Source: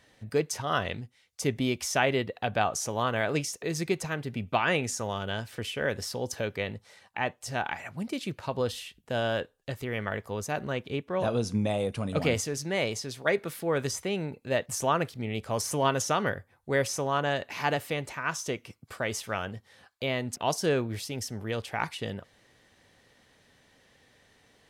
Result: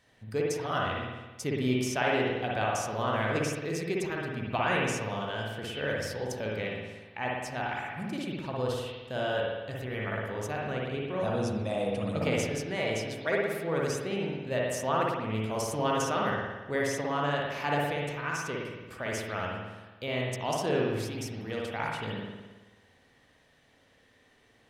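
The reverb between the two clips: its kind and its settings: spring tank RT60 1.2 s, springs 55 ms, chirp 65 ms, DRR -3 dB; gain -5.5 dB

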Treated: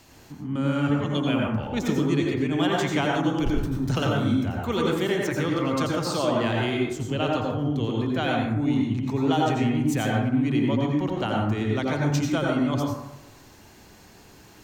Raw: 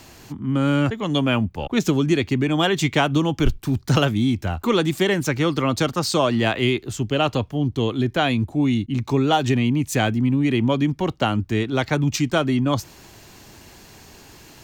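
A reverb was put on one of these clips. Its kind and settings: plate-style reverb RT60 0.93 s, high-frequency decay 0.35×, pre-delay 75 ms, DRR -2 dB; gain -8.5 dB

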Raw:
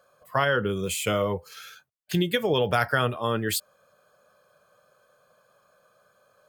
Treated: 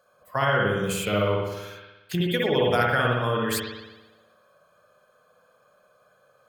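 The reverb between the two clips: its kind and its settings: spring tank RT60 1.1 s, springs 58 ms, chirp 65 ms, DRR -2 dB; gain -2.5 dB

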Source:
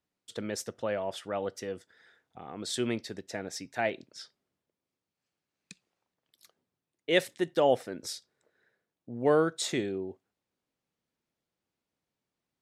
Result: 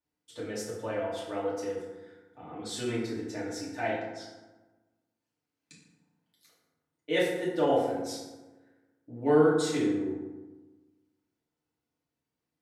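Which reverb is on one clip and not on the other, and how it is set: FDN reverb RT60 1.2 s, low-frequency decay 1.25×, high-frequency decay 0.5×, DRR -8.5 dB; gain -9.5 dB

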